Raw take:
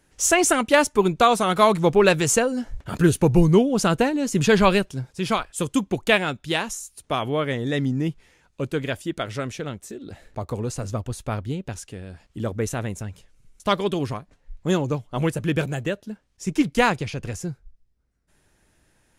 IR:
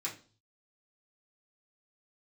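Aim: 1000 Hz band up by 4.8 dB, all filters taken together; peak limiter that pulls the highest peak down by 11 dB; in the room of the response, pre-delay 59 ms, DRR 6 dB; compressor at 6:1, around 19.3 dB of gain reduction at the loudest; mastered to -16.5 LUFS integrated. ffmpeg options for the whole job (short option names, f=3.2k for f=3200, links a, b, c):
-filter_complex "[0:a]equalizer=f=1k:t=o:g=6,acompressor=threshold=-30dB:ratio=6,alimiter=level_in=4dB:limit=-24dB:level=0:latency=1,volume=-4dB,asplit=2[a][b];[1:a]atrim=start_sample=2205,adelay=59[c];[b][c]afir=irnorm=-1:irlink=0,volume=-8dB[d];[a][d]amix=inputs=2:normalize=0,volume=21.5dB"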